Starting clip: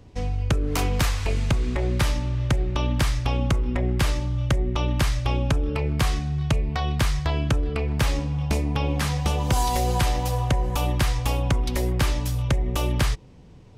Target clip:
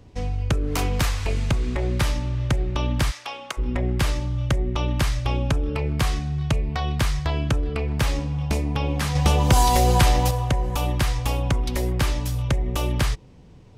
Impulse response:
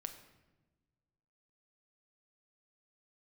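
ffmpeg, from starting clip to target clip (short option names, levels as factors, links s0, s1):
-filter_complex "[0:a]asplit=3[s0][s1][s2];[s0]afade=t=out:st=3.1:d=0.02[s3];[s1]highpass=800,afade=t=in:st=3.1:d=0.02,afade=t=out:st=3.57:d=0.02[s4];[s2]afade=t=in:st=3.57:d=0.02[s5];[s3][s4][s5]amix=inputs=3:normalize=0,asettb=1/sr,asplit=3[s6][s7][s8];[s6]atrim=end=9.154[s9];[s7]atrim=start=9.15:end=10.31,asetpts=PTS-STARTPTS,afade=t=in:d=0.004:c=qsin,afade=t=out:st=1.156:d=0.004:c=qsin,acontrast=35[s10];[s8]atrim=start=10.306[s11];[s9][s10]acrossfade=d=0.004:c1=hsin:c2=qsin[s12];[s12][s11]acrossfade=d=0.004:c1=qsin:c2=hsin"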